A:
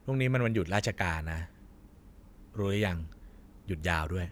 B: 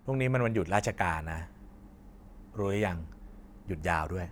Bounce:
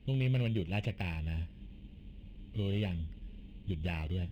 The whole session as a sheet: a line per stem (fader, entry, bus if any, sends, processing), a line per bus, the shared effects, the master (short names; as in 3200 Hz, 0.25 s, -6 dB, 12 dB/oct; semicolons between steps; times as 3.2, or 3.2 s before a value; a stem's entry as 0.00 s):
+2.5 dB, 0.00 s, no send, compressor 3:1, threshold -39 dBFS, peak gain reduction 12 dB; sample-and-hold 13×
0.0 dB, 0.00 s, no send, flange 0.58 Hz, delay 4.9 ms, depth 1.4 ms, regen -79%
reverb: off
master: EQ curve 130 Hz 0 dB, 680 Hz -11 dB, 1300 Hz -22 dB, 2800 Hz +6 dB, 5700 Hz -21 dB